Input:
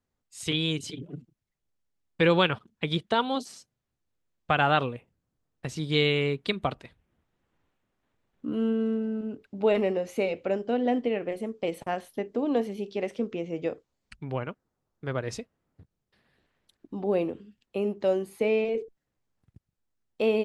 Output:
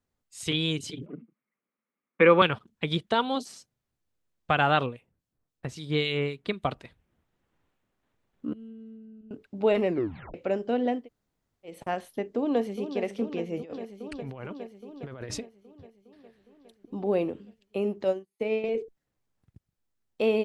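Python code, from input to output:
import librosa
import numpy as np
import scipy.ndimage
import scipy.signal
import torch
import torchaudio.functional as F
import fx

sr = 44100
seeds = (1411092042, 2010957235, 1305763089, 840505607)

y = fx.cabinet(x, sr, low_hz=190.0, low_slope=24, high_hz=2500.0, hz=(220.0, 500.0, 730.0, 1200.0, 2200.0), db=(9, 5, -3, 10, 8), at=(1.06, 2.42))
y = fx.harmonic_tremolo(y, sr, hz=3.7, depth_pct=70, crossover_hz=2300.0, at=(4.86, 6.65))
y = fx.tone_stack(y, sr, knobs='10-0-1', at=(8.53, 9.31))
y = fx.echo_throw(y, sr, start_s=12.36, length_s=0.66, ms=410, feedback_pct=75, wet_db=-10.0)
y = fx.over_compress(y, sr, threshold_db=-38.0, ratio=-1.0, at=(13.57, 15.39))
y = fx.upward_expand(y, sr, threshold_db=-45.0, expansion=2.5, at=(18.04, 18.64))
y = fx.edit(y, sr, fx.tape_stop(start_s=9.87, length_s=0.47),
    fx.room_tone_fill(start_s=10.97, length_s=0.78, crossfade_s=0.24), tone=tone)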